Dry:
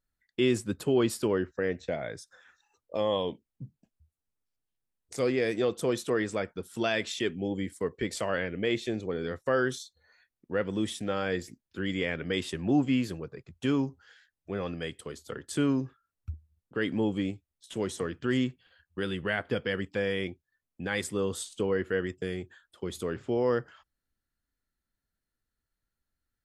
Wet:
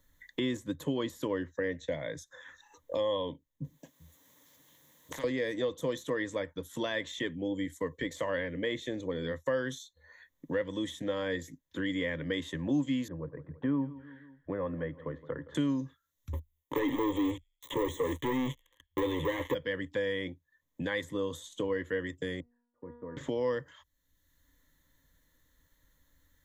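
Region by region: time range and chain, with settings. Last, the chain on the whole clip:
0:03.64–0:05.24: high-pass filter 150 Hz + downward compressor 2 to 1, threshold −38 dBFS + every bin compressed towards the loudest bin 4 to 1
0:13.08–0:15.55: low-pass filter 1,500 Hz 24 dB per octave + repeating echo 167 ms, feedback 39%, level −19.5 dB
0:16.33–0:19.54: delay with a high-pass on its return 83 ms, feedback 44%, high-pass 4,900 Hz, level −10 dB + leveller curve on the samples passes 5 + phaser with its sweep stopped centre 1,000 Hz, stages 8
0:22.40–0:23.17: mu-law and A-law mismatch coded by A + Bessel low-pass filter 950 Hz, order 8 + tuned comb filter 240 Hz, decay 0.68 s, mix 90%
whole clip: de-essing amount 90%; EQ curve with evenly spaced ripples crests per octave 1.1, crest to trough 12 dB; multiband upward and downward compressor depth 70%; level −6 dB

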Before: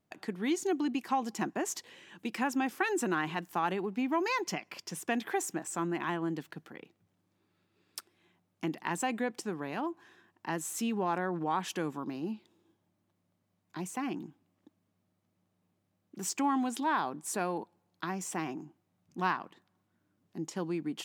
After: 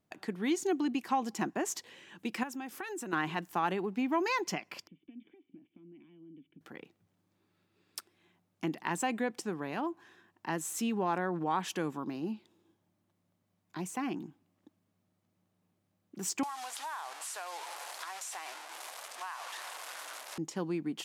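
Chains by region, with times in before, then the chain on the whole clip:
0:02.43–0:03.13: high-shelf EQ 7,200 Hz +6 dB + downward compressor 2.5 to 1, threshold −42 dBFS
0:04.87–0:06.61: downward compressor 5 to 1, threshold −42 dBFS + formant resonators in series i
0:16.43–0:20.38: linear delta modulator 64 kbit/s, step −34 dBFS + high-pass filter 650 Hz 24 dB per octave + downward compressor 5 to 1, threshold −37 dBFS
whole clip: no processing

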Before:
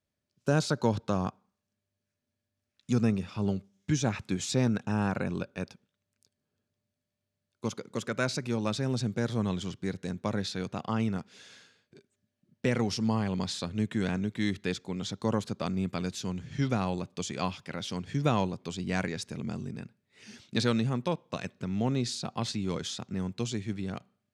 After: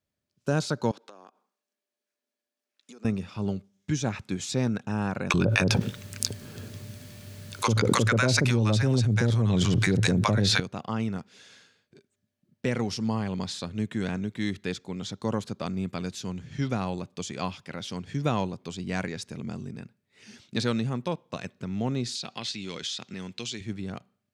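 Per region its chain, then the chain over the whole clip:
0:00.91–0:03.05: high-pass filter 300 Hz 24 dB per octave + downward compressor 8 to 1, threshold −45 dBFS
0:05.30–0:10.60: parametric band 110 Hz +11.5 dB 0.24 octaves + multiband delay without the direct sound highs, lows 40 ms, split 840 Hz + envelope flattener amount 100%
0:22.15–0:23.61: meter weighting curve D + downward compressor 2 to 1, threshold −34 dBFS
whole clip: no processing

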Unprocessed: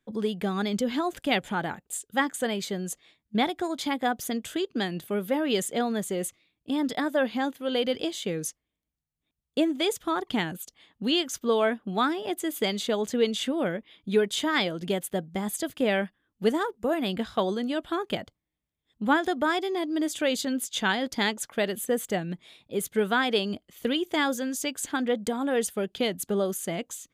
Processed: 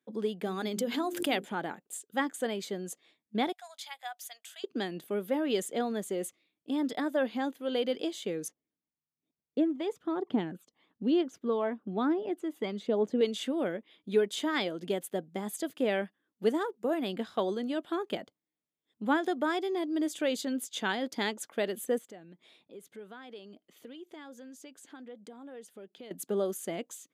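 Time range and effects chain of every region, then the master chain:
0:00.45–0:01.45: high-shelf EQ 10,000 Hz +11 dB + mains-hum notches 50/100/150/200/250/300/350/400/450 Hz + background raised ahead of every attack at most 67 dB per second
0:03.52–0:04.64: elliptic high-pass filter 710 Hz, stop band 50 dB + parametric band 1,000 Hz −10 dB 1.8 octaves
0:08.48–0:13.21: low-pass filter 1,100 Hz 6 dB per octave + phase shifter 1.1 Hz, delay 1.1 ms, feedback 44%
0:21.98–0:26.11: high-shelf EQ 8,800 Hz −8.5 dB + downward compressor 2.5 to 1, threshold −48 dBFS
whole clip: high-pass filter 210 Hz 12 dB per octave; parametric band 340 Hz +5 dB 2 octaves; level −7 dB

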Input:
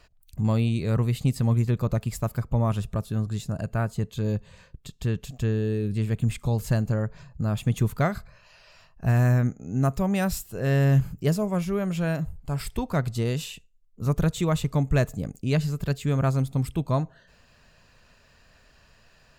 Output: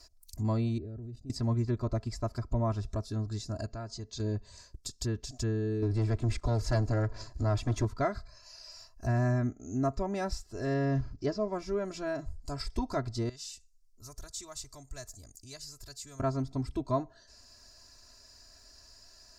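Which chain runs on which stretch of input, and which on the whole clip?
0:00.78–0:01.30: moving average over 41 samples + output level in coarse steps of 17 dB
0:03.66–0:04.20: low-pass filter 5,800 Hz 24 dB per octave + downward compressor 2 to 1, threshold −36 dBFS
0:05.82–0:07.85: parametric band 180 Hz −14 dB 0.48 octaves + leveller curve on the samples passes 2 + single-tap delay 216 ms −24 dB
0:10.74–0:11.53: one scale factor per block 7 bits + low-pass filter 5,800 Hz 24 dB per octave
0:13.29–0:16.20: parametric band 280 Hz −12.5 dB 2.1 octaves + downward compressor 1.5 to 1, threshold −58 dBFS
whole clip: high shelf with overshoot 3,900 Hz +10 dB, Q 3; treble cut that deepens with the level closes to 2,300 Hz, closed at −22 dBFS; comb filter 3 ms, depth 91%; level −6.5 dB

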